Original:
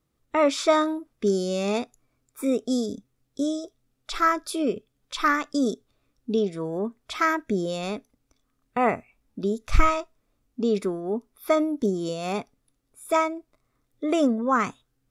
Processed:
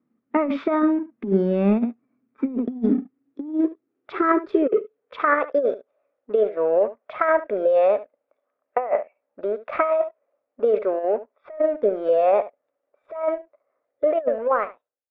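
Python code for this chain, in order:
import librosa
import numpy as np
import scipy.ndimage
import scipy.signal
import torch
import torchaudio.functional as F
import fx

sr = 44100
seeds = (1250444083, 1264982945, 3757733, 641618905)

p1 = fx.fade_out_tail(x, sr, length_s=1.02)
p2 = fx.level_steps(p1, sr, step_db=11)
p3 = p1 + (p2 * librosa.db_to_amplitude(1.5))
p4 = fx.filter_sweep_highpass(p3, sr, from_hz=230.0, to_hz=570.0, start_s=2.61, end_s=5.78, q=7.8)
p5 = fx.leveller(p4, sr, passes=1)
p6 = scipy.signal.sosfilt(scipy.signal.butter(4, 2200.0, 'lowpass', fs=sr, output='sos'), p5)
p7 = p6 + fx.echo_single(p6, sr, ms=72, db=-15.5, dry=0)
p8 = fx.over_compress(p7, sr, threshold_db=-10.0, ratio=-0.5)
y = p8 * librosa.db_to_amplitude(-8.5)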